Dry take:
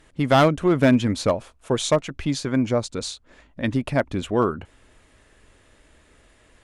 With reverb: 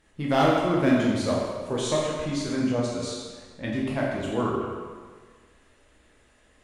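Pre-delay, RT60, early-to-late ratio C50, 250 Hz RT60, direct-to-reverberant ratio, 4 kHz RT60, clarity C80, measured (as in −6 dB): 12 ms, 1.6 s, −0.5 dB, 1.5 s, −5.0 dB, 1.3 s, 1.5 dB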